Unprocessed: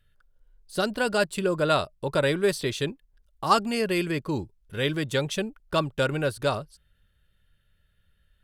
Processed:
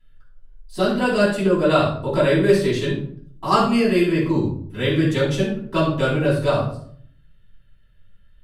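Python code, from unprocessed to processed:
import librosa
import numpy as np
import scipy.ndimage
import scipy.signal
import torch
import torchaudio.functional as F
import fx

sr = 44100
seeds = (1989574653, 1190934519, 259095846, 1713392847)

y = fx.high_shelf(x, sr, hz=6700.0, db=-6.0)
y = fx.room_shoebox(y, sr, seeds[0], volume_m3=710.0, walls='furnished', distance_m=9.8)
y = y * librosa.db_to_amplitude(-6.5)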